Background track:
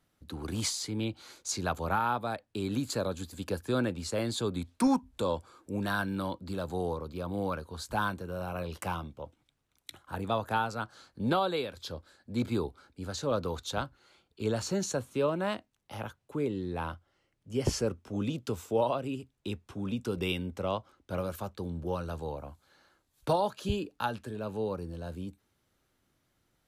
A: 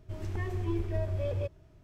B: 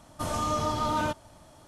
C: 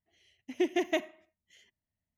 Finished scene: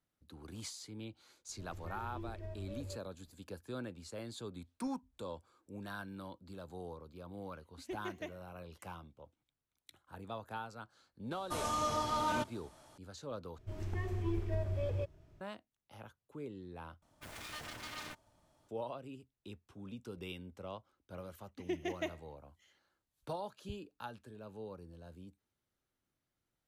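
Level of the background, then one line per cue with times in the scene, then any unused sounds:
background track −13.5 dB
0:01.49: mix in A −14 dB
0:07.29: mix in C −15 dB + pitch vibrato 8.2 Hz 74 cents
0:11.31: mix in B −4.5 dB + low-shelf EQ 350 Hz −7 dB
0:13.58: overwrite with A −4 dB
0:17.02: overwrite with B −17 dB + phase distortion by the signal itself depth 0.98 ms
0:21.09: mix in C −9 dB

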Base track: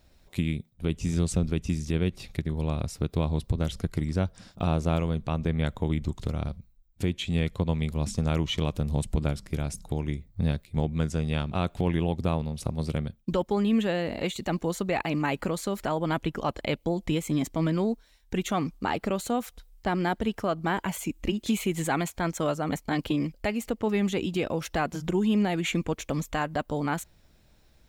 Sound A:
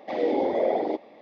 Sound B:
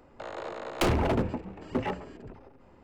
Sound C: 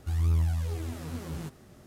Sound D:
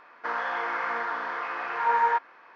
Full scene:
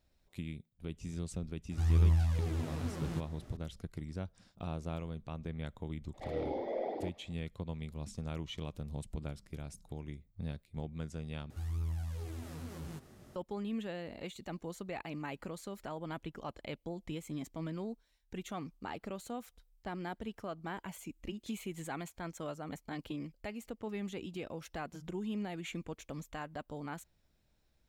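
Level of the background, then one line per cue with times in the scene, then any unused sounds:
base track −14 dB
0:01.71: mix in C −1 dB + high-shelf EQ 8,900 Hz −11 dB
0:06.13: mix in A −13 dB, fades 0.02 s
0:11.50: overwrite with C −3.5 dB + downward compressor 1.5 to 1, threshold −43 dBFS
not used: B, D

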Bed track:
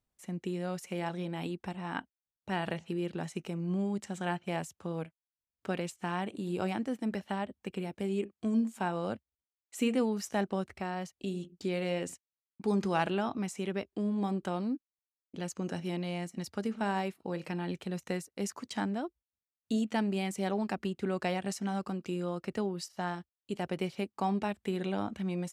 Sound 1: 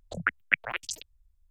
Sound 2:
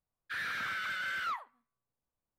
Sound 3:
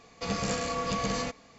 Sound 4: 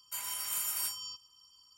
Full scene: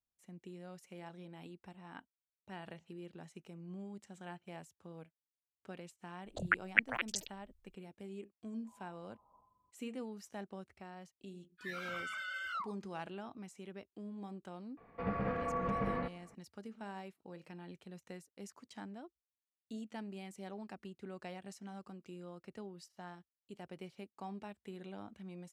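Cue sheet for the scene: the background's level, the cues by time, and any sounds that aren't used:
bed track −14.5 dB
0:06.25: mix in 1 −4 dB
0:08.54: mix in 4 −13.5 dB + Butterworth low-pass 1,100 Hz 96 dB per octave
0:11.28: mix in 2 −4.5 dB + noise reduction from a noise print of the clip's start 24 dB
0:14.77: mix in 3 −4.5 dB + low-pass filter 1,900 Hz 24 dB per octave

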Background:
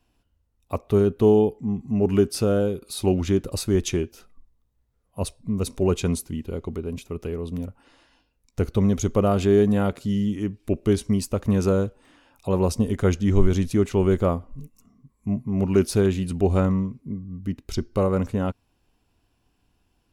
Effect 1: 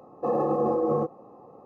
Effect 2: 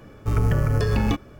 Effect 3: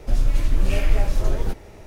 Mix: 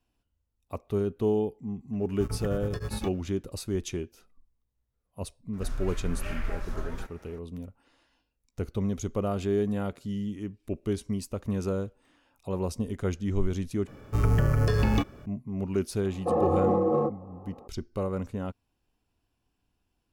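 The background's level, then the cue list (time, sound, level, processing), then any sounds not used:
background −9 dB
0:01.93: mix in 2 −10 dB + tremolo along a rectified sine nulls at 9.8 Hz
0:05.53: mix in 3 −14.5 dB + parametric band 1,400 Hz +14 dB 1.1 octaves
0:13.87: overwrite with 2 −2.5 dB
0:16.03: mix in 1 + adaptive Wiener filter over 9 samples

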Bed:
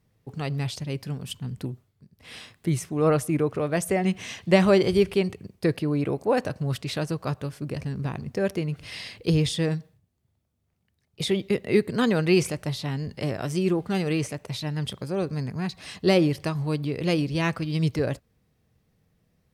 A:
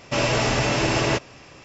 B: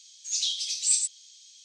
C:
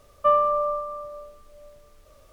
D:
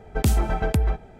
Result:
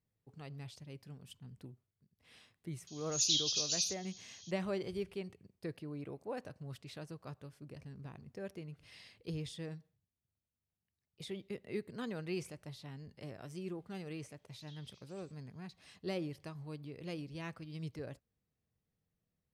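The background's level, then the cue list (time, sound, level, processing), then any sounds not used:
bed −19 dB
0:02.87: mix in B −3 dB + brick-wall band-pass 2,400–7,100 Hz
0:14.25: mix in B −17.5 dB + Chebyshev low-pass filter 1,600 Hz
not used: A, C, D

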